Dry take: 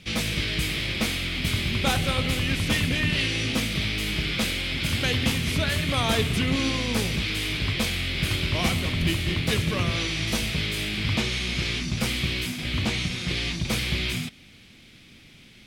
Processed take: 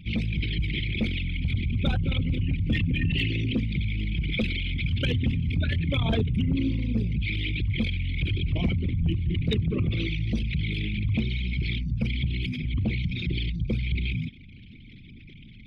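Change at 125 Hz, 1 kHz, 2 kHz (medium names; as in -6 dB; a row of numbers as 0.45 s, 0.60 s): +2.0 dB, -13.0 dB, -7.0 dB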